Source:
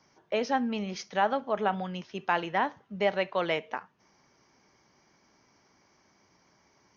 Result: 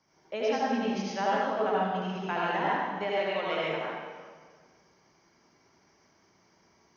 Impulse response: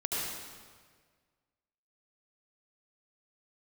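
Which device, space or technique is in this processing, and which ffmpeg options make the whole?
stairwell: -filter_complex "[1:a]atrim=start_sample=2205[link_01];[0:a][link_01]afir=irnorm=-1:irlink=0,asettb=1/sr,asplit=3[link_02][link_03][link_04];[link_02]atrim=end=3.044[link_05];[link_03]atrim=start=3.04:end=3.71,asetpts=PTS-STARTPTS,afade=type=in:duration=0.004:curve=qsin,afade=type=out:start_time=0.666:duration=0.004:curve=qsin,equalizer=frequency=140:width=0.4:gain=-5.5[link_06];[link_04]atrim=start=3.706[link_07];[link_05][link_06]acrossfade=duration=0.004:curve1=hsin:curve2=qsin[link_08];[link_08][link_07]acrossfade=duration=0.004:curve1=qsin:curve2=hsin,volume=-6dB"

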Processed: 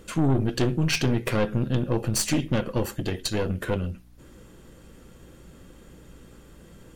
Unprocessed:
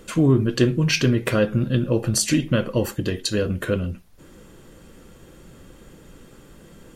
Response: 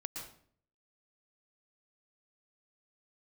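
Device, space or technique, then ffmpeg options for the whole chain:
valve amplifier with mains hum: -af "aeval=exprs='(tanh(7.08*val(0)+0.65)-tanh(0.65))/7.08':channel_layout=same,aeval=exprs='val(0)+0.00224*(sin(2*PI*60*n/s)+sin(2*PI*2*60*n/s)/2+sin(2*PI*3*60*n/s)/3+sin(2*PI*4*60*n/s)/4+sin(2*PI*5*60*n/s)/5)':channel_layout=same"

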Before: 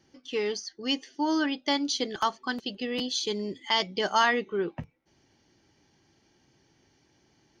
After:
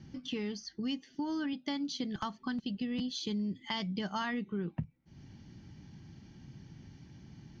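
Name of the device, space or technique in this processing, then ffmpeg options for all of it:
jukebox: -filter_complex "[0:a]lowpass=5600,lowshelf=frequency=280:width_type=q:width=1.5:gain=13.5,acompressor=threshold=-42dB:ratio=3,asettb=1/sr,asplit=3[link_01][link_02][link_03];[link_01]atrim=end=1.534[link_04];[link_02]atrim=start=1.53:end=2.04,asetpts=PTS-STARTPTS,afade=type=in:duration=0.004:curve=qsin,afade=type=out:start_time=0.506:duration=0.004:curve=qsin,highpass=100[link_05];[link_03]atrim=start=2.036[link_06];[link_04][link_05]acrossfade=duration=0.004:curve1=hsin:curve2=qsin[link_07];[link_07][link_06]acrossfade=duration=0.004:curve1=qsin:curve2=hsin,volume=3.5dB"

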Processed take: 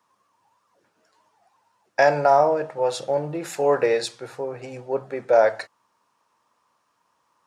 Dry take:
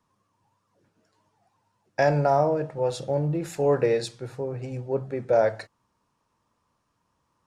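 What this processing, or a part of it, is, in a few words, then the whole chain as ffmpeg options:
filter by subtraction: -filter_complex "[0:a]asplit=2[link_01][link_02];[link_02]lowpass=940,volume=-1[link_03];[link_01][link_03]amix=inputs=2:normalize=0,volume=5dB"

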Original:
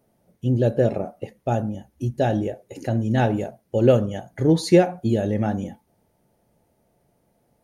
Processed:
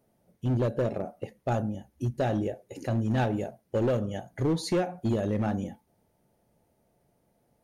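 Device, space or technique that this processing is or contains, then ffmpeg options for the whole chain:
limiter into clipper: -af "alimiter=limit=-11dB:level=0:latency=1:release=263,asoftclip=type=hard:threshold=-17dB,volume=-4dB"

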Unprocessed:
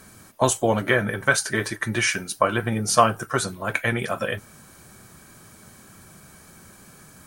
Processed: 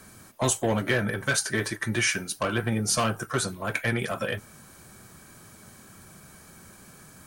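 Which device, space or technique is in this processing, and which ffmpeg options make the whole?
one-band saturation: -filter_complex "[0:a]acrossover=split=360|2400[link_01][link_02][link_03];[link_02]asoftclip=type=tanh:threshold=-23dB[link_04];[link_01][link_04][link_03]amix=inputs=3:normalize=0,volume=-1.5dB"

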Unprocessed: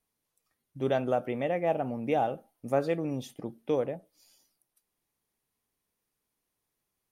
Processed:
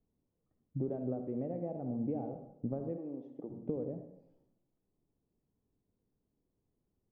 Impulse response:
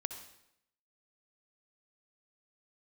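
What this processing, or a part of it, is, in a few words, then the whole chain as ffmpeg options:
television next door: -filter_complex "[0:a]acompressor=threshold=-41dB:ratio=4,lowpass=350[link_01];[1:a]atrim=start_sample=2205[link_02];[link_01][link_02]afir=irnorm=-1:irlink=0,asplit=3[link_03][link_04][link_05];[link_03]afade=type=out:start_time=2.96:duration=0.02[link_06];[link_04]highpass=390,afade=type=in:start_time=2.96:duration=0.02,afade=type=out:start_time=3.49:duration=0.02[link_07];[link_05]afade=type=in:start_time=3.49:duration=0.02[link_08];[link_06][link_07][link_08]amix=inputs=3:normalize=0,volume=10dB"

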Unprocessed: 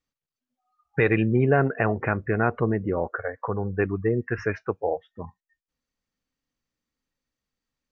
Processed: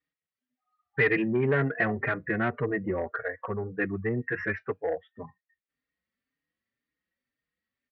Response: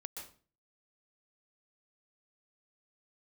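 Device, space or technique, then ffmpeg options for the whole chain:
barber-pole flanger into a guitar amplifier: -filter_complex "[0:a]asplit=2[link_01][link_02];[link_02]adelay=4.5,afreqshift=1.9[link_03];[link_01][link_03]amix=inputs=2:normalize=1,asoftclip=type=tanh:threshold=-18dB,highpass=79,equalizer=frequency=110:width_type=q:width=4:gain=-4,equalizer=frequency=880:width_type=q:width=4:gain=-6,equalizer=frequency=1900:width_type=q:width=4:gain=10,lowpass=frequency=4100:width=0.5412,lowpass=frequency=4100:width=1.3066"

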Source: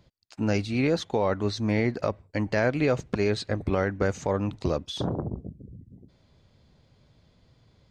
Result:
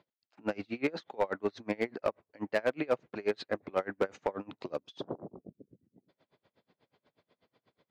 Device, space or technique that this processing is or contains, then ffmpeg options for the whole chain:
helicopter radio: -filter_complex "[0:a]highpass=42,highpass=320,lowpass=2900,aeval=exprs='val(0)*pow(10,-30*(0.5-0.5*cos(2*PI*8.2*n/s))/20)':channel_layout=same,asoftclip=type=hard:threshold=-22dB,asettb=1/sr,asplit=3[link_01][link_02][link_03];[link_01]atrim=end=4.694[link_04];[link_02]atrim=start=4.69:end=5.09,asetpts=PTS-STARTPTS,afade=type=in:duration=0.004:curve=qsin,afade=type=out:start_time=0.396:duration=0.004:curve=qsin,equalizer=frequency=1200:width=0.33:gain=-6[link_05];[link_03]atrim=start=5.086[link_06];[link_04][link_05]acrossfade=duration=0.004:curve1=hsin:curve2=qsin[link_07];[link_07][link_06]acrossfade=duration=0.004:curve1=qsin:curve2=hsin,volume=2dB"

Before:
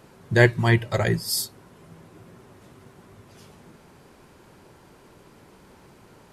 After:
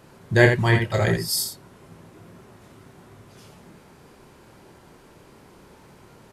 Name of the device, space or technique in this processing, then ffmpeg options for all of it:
slapback doubling: -filter_complex "[0:a]asplit=3[link_01][link_02][link_03];[link_02]adelay=28,volume=-6dB[link_04];[link_03]adelay=84,volume=-7dB[link_05];[link_01][link_04][link_05]amix=inputs=3:normalize=0"

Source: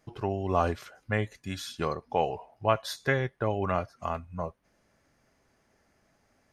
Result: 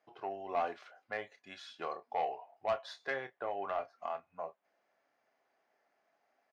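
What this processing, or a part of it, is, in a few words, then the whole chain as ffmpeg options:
intercom: -filter_complex "[0:a]highpass=470,lowpass=3700,equalizer=frequency=720:width_type=o:width=0.33:gain=7.5,asoftclip=type=tanh:threshold=-18dB,asplit=2[link_01][link_02];[link_02]adelay=30,volume=-11dB[link_03];[link_01][link_03]amix=inputs=2:normalize=0,volume=-7.5dB"

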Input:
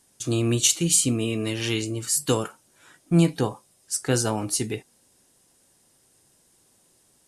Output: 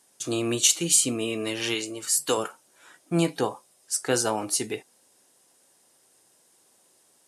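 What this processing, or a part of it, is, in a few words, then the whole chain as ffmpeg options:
filter by subtraction: -filter_complex "[0:a]asettb=1/sr,asplit=3[link_01][link_02][link_03];[link_01]atrim=end=1.744[link_04];[link_02]atrim=start=1.74:end=2.38,asetpts=PTS-STARTPTS,afade=type=in:duration=0.004:curve=qsin,afade=type=out:start_time=0.636:duration=0.004:curve=qsin,lowshelf=frequency=230:gain=-9[link_05];[link_03]atrim=start=2.376[link_06];[link_04][link_05]acrossfade=duration=0.004:curve1=hsin:curve2=qsin[link_07];[link_07][link_06]acrossfade=duration=0.004:curve1=qsin:curve2=hsin,asplit=2[link_08][link_09];[link_09]lowpass=620,volume=-1[link_10];[link_08][link_10]amix=inputs=2:normalize=0"

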